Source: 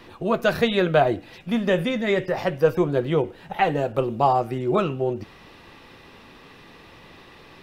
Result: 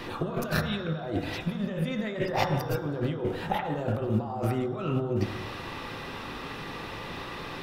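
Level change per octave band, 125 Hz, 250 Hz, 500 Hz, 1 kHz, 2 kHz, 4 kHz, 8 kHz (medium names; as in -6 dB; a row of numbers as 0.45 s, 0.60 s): -0.5 dB, -5.0 dB, -10.0 dB, -8.5 dB, -6.5 dB, -4.5 dB, no reading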